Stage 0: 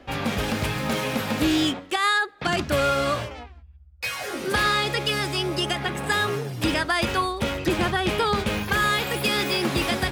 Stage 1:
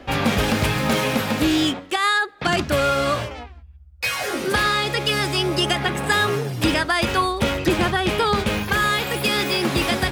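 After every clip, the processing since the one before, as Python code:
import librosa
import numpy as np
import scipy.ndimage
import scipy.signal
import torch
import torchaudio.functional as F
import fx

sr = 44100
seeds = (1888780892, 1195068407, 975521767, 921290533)

y = fx.rider(x, sr, range_db=10, speed_s=0.5)
y = F.gain(torch.from_numpy(y), 3.5).numpy()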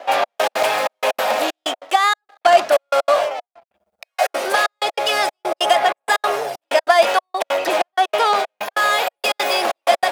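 y = fx.leveller(x, sr, passes=2)
y = fx.step_gate(y, sr, bpm=190, pattern='xxx..x.x', floor_db=-60.0, edge_ms=4.5)
y = fx.highpass_res(y, sr, hz=660.0, q=4.9)
y = F.gain(torch.from_numpy(y), -4.0).numpy()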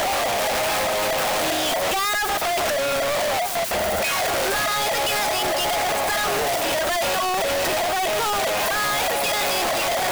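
y = np.sign(x) * np.sqrt(np.mean(np.square(x)))
y = F.gain(torch.from_numpy(y), -3.0).numpy()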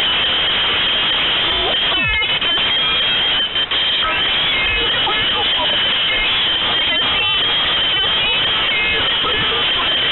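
y = fx.freq_invert(x, sr, carrier_hz=3800)
y = F.gain(torch.from_numpy(y), 6.5).numpy()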